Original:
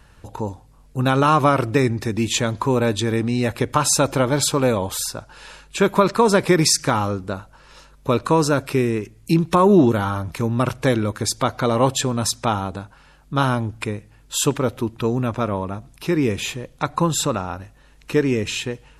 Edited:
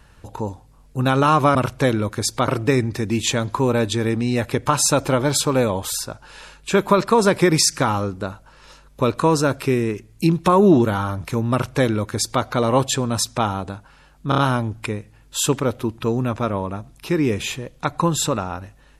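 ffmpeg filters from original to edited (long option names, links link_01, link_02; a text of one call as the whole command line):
ffmpeg -i in.wav -filter_complex "[0:a]asplit=6[link_01][link_02][link_03][link_04][link_05][link_06];[link_01]atrim=end=1.552[link_07];[link_02]atrim=start=10.578:end=11.512[link_08];[link_03]atrim=start=1.548:end=13.392[link_09];[link_04]atrim=start=13.358:end=13.392[link_10];[link_05]atrim=start=13.358:end=13.392[link_11];[link_06]atrim=start=13.358[link_12];[link_07][link_08]acrossfade=duration=0.004:curve1=hsin:curve2=hsin[link_13];[link_13][link_09]acrossfade=duration=0.004:curve1=hsin:curve2=hsin[link_14];[link_14][link_10]acrossfade=duration=0.004:curve1=hsin:curve2=hsin[link_15];[link_15][link_11]acrossfade=duration=0.004:curve1=hsin:curve2=hsin[link_16];[link_16][link_12]acrossfade=duration=0.004:curve1=hsin:curve2=hsin" out.wav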